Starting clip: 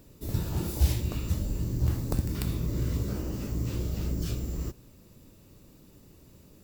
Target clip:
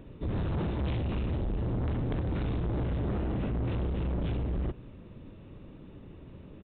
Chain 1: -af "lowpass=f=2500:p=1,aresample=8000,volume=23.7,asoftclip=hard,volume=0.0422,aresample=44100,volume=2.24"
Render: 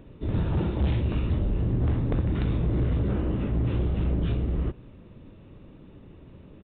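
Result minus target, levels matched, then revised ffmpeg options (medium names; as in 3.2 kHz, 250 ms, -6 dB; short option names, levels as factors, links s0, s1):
overload inside the chain: distortion -4 dB
-af "lowpass=f=2500:p=1,aresample=8000,volume=59.6,asoftclip=hard,volume=0.0168,aresample=44100,volume=2.24"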